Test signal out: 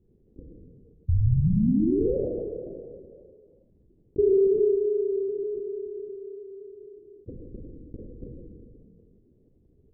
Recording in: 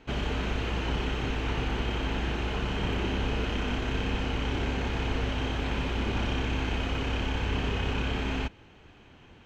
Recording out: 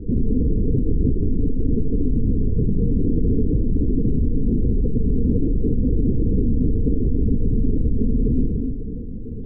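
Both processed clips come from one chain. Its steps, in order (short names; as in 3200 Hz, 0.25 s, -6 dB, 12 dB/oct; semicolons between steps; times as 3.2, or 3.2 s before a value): steep low-pass 500 Hz 72 dB/oct; low shelf 270 Hz +11 dB; Schroeder reverb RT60 1.3 s, combs from 27 ms, DRR 1.5 dB; LPC vocoder at 8 kHz whisper; fast leveller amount 50%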